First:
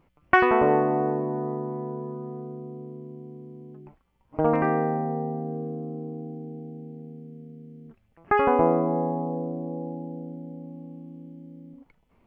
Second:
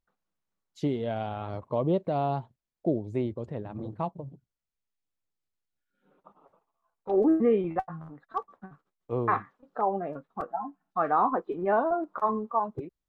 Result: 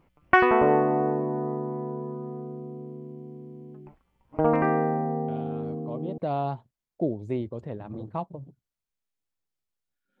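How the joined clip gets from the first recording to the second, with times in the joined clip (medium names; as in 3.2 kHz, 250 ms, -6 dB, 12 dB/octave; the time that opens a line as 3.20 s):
first
5.28 s: add second from 1.13 s 0.90 s -10 dB
6.18 s: go over to second from 2.03 s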